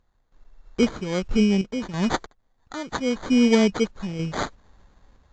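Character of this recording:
a quantiser's noise floor 12 bits, dither triangular
sample-and-hold tremolo 3.1 Hz, depth 90%
aliases and images of a low sample rate 2,700 Hz, jitter 0%
AAC

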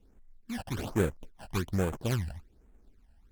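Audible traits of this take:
aliases and images of a low sample rate 2,000 Hz, jitter 20%
phaser sweep stages 12, 1.2 Hz, lowest notch 360–5,000 Hz
Opus

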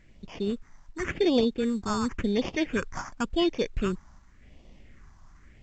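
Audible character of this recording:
sample-and-hold tremolo 4.3 Hz, depth 55%
aliases and images of a low sample rate 4,000 Hz, jitter 0%
phaser sweep stages 4, 0.91 Hz, lowest notch 450–1,500 Hz
A-law companding

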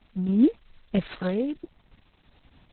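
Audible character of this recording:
a buzz of ramps at a fixed pitch in blocks of 8 samples
sample-and-hold tremolo
a quantiser's noise floor 10 bits, dither triangular
Opus

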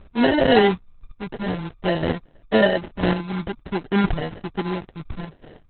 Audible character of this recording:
phaser sweep stages 4, 0.53 Hz, lowest notch 460–2,900 Hz
chopped level 0.99 Hz, depth 60%, duty 10%
aliases and images of a low sample rate 1,200 Hz, jitter 0%
Opus

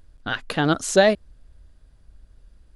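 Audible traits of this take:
background noise floor −56 dBFS
spectral slope −4.0 dB per octave

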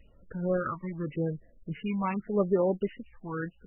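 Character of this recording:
phaser sweep stages 8, 0.87 Hz, lowest notch 410–3,100 Hz
MP3

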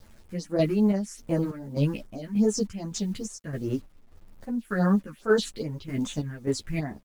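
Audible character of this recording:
phaser sweep stages 4, 2.5 Hz, lowest notch 650–4,900 Hz
a quantiser's noise floor 10 bits, dither none
chopped level 1.7 Hz, depth 60%, duty 55%
a shimmering, thickened sound

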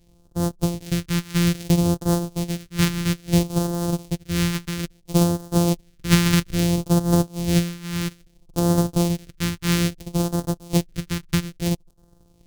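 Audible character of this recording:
a buzz of ramps at a fixed pitch in blocks of 256 samples
phaser sweep stages 2, 0.6 Hz, lowest notch 620–2,200 Hz

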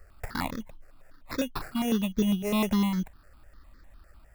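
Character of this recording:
aliases and images of a low sample rate 3,100 Hz, jitter 0%
notches that jump at a steady rate 9.9 Hz 970–2,800 Hz

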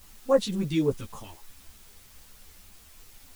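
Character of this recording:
phaser sweep stages 2, 3.7 Hz, lowest notch 650–3,300 Hz
a quantiser's noise floor 8 bits, dither triangular
a shimmering, thickened sound

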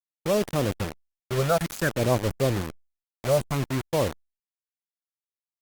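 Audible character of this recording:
phaser sweep stages 12, 0.55 Hz, lowest notch 290–1,700 Hz
a quantiser's noise floor 6 bits, dither none
Opus

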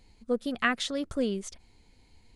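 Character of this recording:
background noise floor −61 dBFS
spectral slope −3.5 dB per octave

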